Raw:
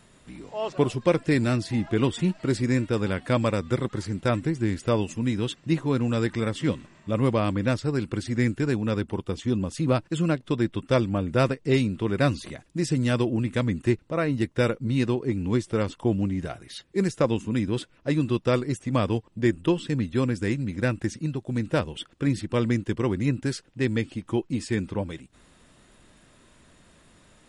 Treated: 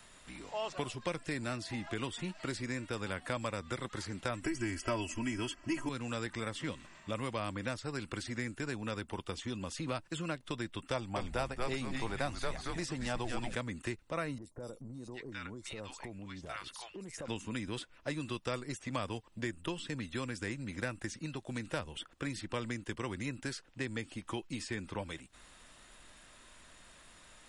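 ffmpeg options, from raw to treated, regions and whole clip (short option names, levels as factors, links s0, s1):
-filter_complex "[0:a]asettb=1/sr,asplit=3[s0][s1][s2];[s0]atrim=end=4.444[s3];[s1]atrim=start=4.44:end=5.89,asetpts=PTS-STARTPTS,afade=t=in:d=0.004:c=qsin,afade=t=out:st=1.446:d=0.004:c=qsin,aecho=1:1:3.1:0.99,atrim=end_sample=63945,acontrast=70,asuperstop=centerf=3800:order=8:qfactor=4[s4];[s2]atrim=start=5.886[s5];[s3][s4]acrossfade=d=0.004:c1=hsin:c2=qsin[s6];[s6][s5]acrossfade=d=0.004:c1=qsin:c2=hsin,asettb=1/sr,asplit=3[s7][s8][s9];[s7]atrim=end=10.934[s10];[s8]atrim=start=10.93:end=13.55,asetpts=PTS-STARTPTS,afade=t=in:d=0.004:c=qsin,afade=t=out:st=2.616:d=0.004:c=qsin,equalizer=f=790:w=3.5:g=10.5,asplit=6[s11][s12][s13][s14][s15][s16];[s12]adelay=227,afreqshift=-130,volume=0.531[s17];[s13]adelay=454,afreqshift=-260,volume=0.224[s18];[s14]adelay=681,afreqshift=-390,volume=0.0933[s19];[s15]adelay=908,afreqshift=-520,volume=0.0394[s20];[s16]adelay=1135,afreqshift=-650,volume=0.0166[s21];[s11][s17][s18][s19][s20][s21]amix=inputs=6:normalize=0,atrim=end_sample=115542[s22];[s9]atrim=start=13.546[s23];[s10][s22]acrossfade=d=0.004:c1=hsin:c2=qsin[s24];[s24][s23]acrossfade=d=0.004:c1=qsin:c2=hsin,asettb=1/sr,asplit=3[s25][s26][s27];[s25]atrim=end=14.384[s28];[s26]atrim=start=14.38:end=17.28,asetpts=PTS-STARTPTS,afade=t=in:d=0.004:c=qsin,afade=t=out:st=2.896:d=0.004:c=qsin,acrossover=split=1000|5400[s29][s30][s31];[s31]adelay=40[s32];[s30]adelay=760[s33];[s29][s33][s32]amix=inputs=3:normalize=0,atrim=end_sample=127890,acompressor=threshold=0.0178:ratio=6:attack=3.2:release=140:knee=1:detection=peak[s34];[s27]atrim=start=17.276[s35];[s28][s34]acrossfade=d=0.004:c1=hsin:c2=qsin[s36];[s36][s35]acrossfade=d=0.004:c1=qsin:c2=hsin,equalizer=f=410:t=o:w=0.95:g=-4,acrossover=split=210|1600|7000[s37][s38][s39][s40];[s37]acompressor=threshold=0.02:ratio=4[s41];[s38]acompressor=threshold=0.0178:ratio=4[s42];[s39]acompressor=threshold=0.00447:ratio=4[s43];[s40]acompressor=threshold=0.00141:ratio=4[s44];[s41][s42][s43][s44]amix=inputs=4:normalize=0,equalizer=f=140:t=o:w=2.9:g=-12,volume=1.26"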